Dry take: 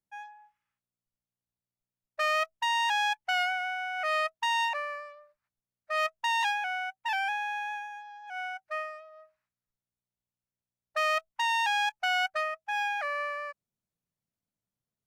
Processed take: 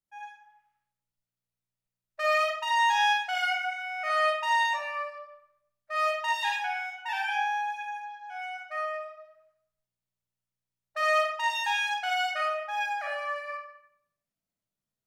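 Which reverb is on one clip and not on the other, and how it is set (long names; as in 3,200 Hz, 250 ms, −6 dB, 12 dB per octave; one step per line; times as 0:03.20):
comb and all-pass reverb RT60 0.72 s, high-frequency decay 0.85×, pre-delay 5 ms, DRR −3.5 dB
level −4.5 dB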